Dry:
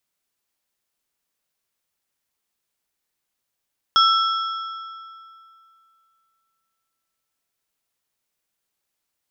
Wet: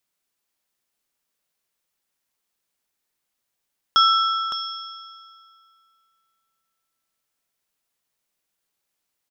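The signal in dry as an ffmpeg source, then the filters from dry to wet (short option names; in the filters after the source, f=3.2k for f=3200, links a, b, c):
-f lavfi -i "aevalsrc='0.237*pow(10,-3*t/2.58)*sin(2*PI*1330*t)+0.15*pow(10,-3*t/1.96)*sin(2*PI*3325*t)+0.0944*pow(10,-3*t/1.702)*sin(2*PI*5320*t)':d=4.83:s=44100"
-filter_complex "[0:a]equalizer=f=76:t=o:w=0.67:g=-5,asplit=2[a][b];[b]aecho=0:1:562:0.355[c];[a][c]amix=inputs=2:normalize=0"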